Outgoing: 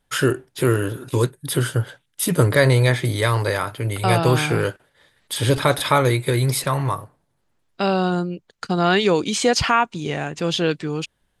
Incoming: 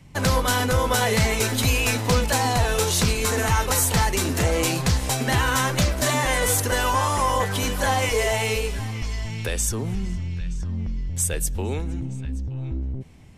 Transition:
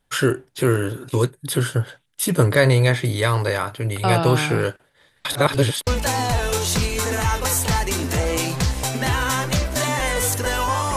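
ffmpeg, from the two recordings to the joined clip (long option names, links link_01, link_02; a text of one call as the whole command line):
ffmpeg -i cue0.wav -i cue1.wav -filter_complex "[0:a]apad=whole_dur=10.96,atrim=end=10.96,asplit=2[link_01][link_02];[link_01]atrim=end=5.252[link_03];[link_02]atrim=start=5.248:end=5.872,asetpts=PTS-STARTPTS,areverse[link_04];[1:a]atrim=start=2.128:end=7.22[link_05];[link_03][link_04]acrossfade=duration=0.004:curve1=hsin:curve2=hsin[link_06];[link_06][link_05]acrossfade=duration=0.004:curve1=hsin:curve2=hsin" out.wav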